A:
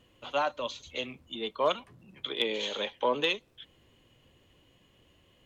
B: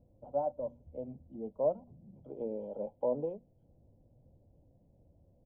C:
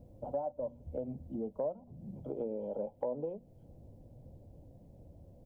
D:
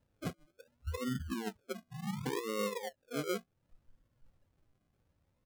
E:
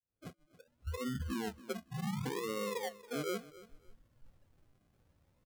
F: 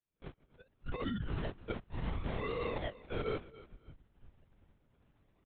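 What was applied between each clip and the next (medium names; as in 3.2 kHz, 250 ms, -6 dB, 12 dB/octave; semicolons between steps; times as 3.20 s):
inverse Chebyshev low-pass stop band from 1.6 kHz, stop band 50 dB; hum notches 60/120/180/240 Hz; comb 1.3 ms, depth 60%
compression 4:1, threshold -45 dBFS, peak gain reduction 17 dB; trim +9.5 dB
compressor with a negative ratio -40 dBFS, ratio -0.5; spectral noise reduction 29 dB; decimation with a swept rate 38×, swing 60% 0.68 Hz; trim +5 dB
fade-in on the opening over 1.44 s; peak limiter -36 dBFS, peak gain reduction 9.5 dB; feedback delay 279 ms, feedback 22%, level -18 dB; trim +4.5 dB
LPC vocoder at 8 kHz whisper; trim +1 dB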